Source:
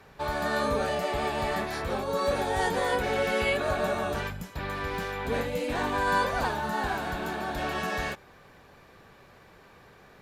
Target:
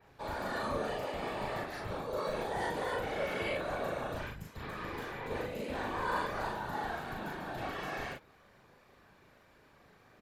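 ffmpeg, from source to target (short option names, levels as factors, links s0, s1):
-filter_complex "[0:a]adynamicequalizer=threshold=0.00316:dfrequency=7800:dqfactor=0.78:tfrequency=7800:tqfactor=0.78:attack=5:release=100:ratio=0.375:range=2:mode=cutabove:tftype=bell,afftfilt=real='hypot(re,im)*cos(2*PI*random(0))':imag='hypot(re,im)*sin(2*PI*random(1))':win_size=512:overlap=0.75,asplit=2[s0][s1];[s1]adelay=38,volume=0.75[s2];[s0][s2]amix=inputs=2:normalize=0,volume=0.631"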